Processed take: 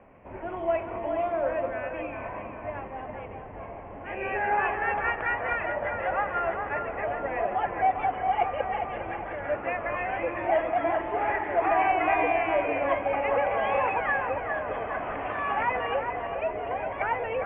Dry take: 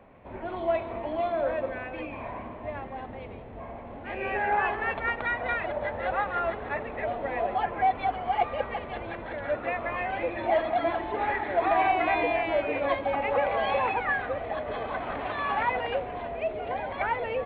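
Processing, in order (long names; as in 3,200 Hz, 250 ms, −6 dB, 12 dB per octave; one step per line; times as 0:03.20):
Butterworth low-pass 3,000 Hz 72 dB per octave
mains-hum notches 60/120/180/240 Hz
on a send: feedback echo with a band-pass in the loop 405 ms, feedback 47%, band-pass 1,100 Hz, level −5.5 dB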